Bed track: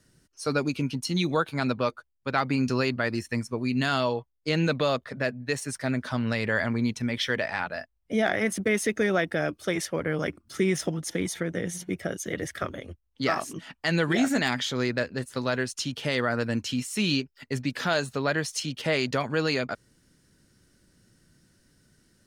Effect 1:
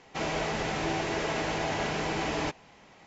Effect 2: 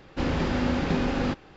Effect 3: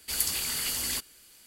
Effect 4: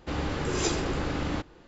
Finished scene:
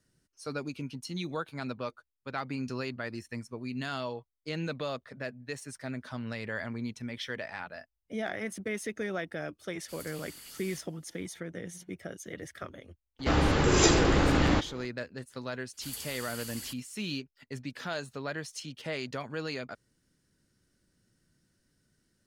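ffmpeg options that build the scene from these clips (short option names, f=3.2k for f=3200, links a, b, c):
-filter_complex "[3:a]asplit=2[a][b];[0:a]volume=-10dB[c];[a]asoftclip=type=tanh:threshold=-20.5dB[d];[4:a]acontrast=86[e];[b]asoftclip=type=tanh:threshold=-14.5dB[f];[d]atrim=end=1.46,asetpts=PTS-STARTPTS,volume=-17.5dB,afade=t=in:d=0.004:c=hsin,afade=t=out:st=1.456:d=0.004:c=hsin,adelay=9800[g];[e]atrim=end=1.67,asetpts=PTS-STARTPTS,volume=-1.5dB,afade=t=in:d=0.004:c=hsin,afade=t=out:st=1.666:d=0.004:c=hsin,adelay=13190[h];[f]atrim=end=1.46,asetpts=PTS-STARTPTS,volume=-11.5dB,afade=t=in:d=0.004:c=hsin,afade=t=out:st=1.456:d=0.004:c=hsin,adelay=15730[i];[c][g][h][i]amix=inputs=4:normalize=0"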